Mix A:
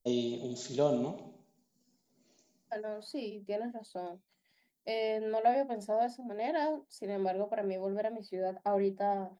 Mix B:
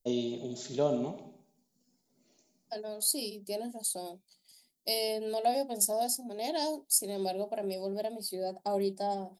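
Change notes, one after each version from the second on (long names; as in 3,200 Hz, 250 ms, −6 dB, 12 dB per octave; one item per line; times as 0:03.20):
second voice: remove low-pass with resonance 1,800 Hz, resonance Q 2.4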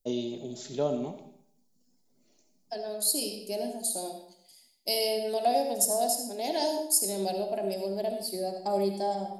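second voice: send on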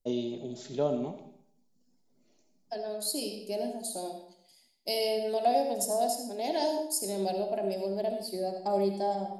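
master: add high-shelf EQ 5,500 Hz −9.5 dB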